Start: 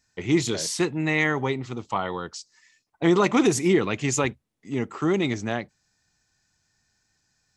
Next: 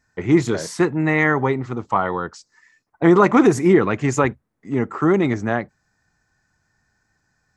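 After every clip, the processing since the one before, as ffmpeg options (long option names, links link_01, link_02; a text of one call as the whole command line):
ffmpeg -i in.wav -af "highshelf=frequency=2200:width_type=q:width=1.5:gain=-9.5,volume=6dB" out.wav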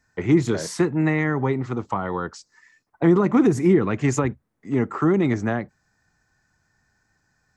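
ffmpeg -i in.wav -filter_complex "[0:a]acrossover=split=330[link_01][link_02];[link_02]acompressor=threshold=-23dB:ratio=10[link_03];[link_01][link_03]amix=inputs=2:normalize=0" out.wav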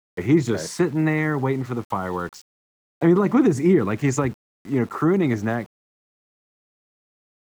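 ffmpeg -i in.wav -af "aeval=exprs='val(0)*gte(abs(val(0)),0.00841)':channel_layout=same" out.wav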